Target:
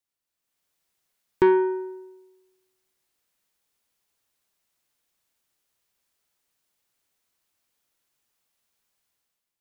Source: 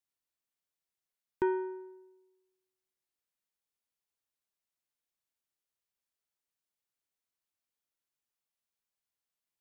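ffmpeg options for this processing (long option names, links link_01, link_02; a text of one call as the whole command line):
ffmpeg -i in.wav -af "dynaudnorm=framelen=110:gausssize=9:maxgain=11dB,asoftclip=type=tanh:threshold=-13dB,volume=3dB" out.wav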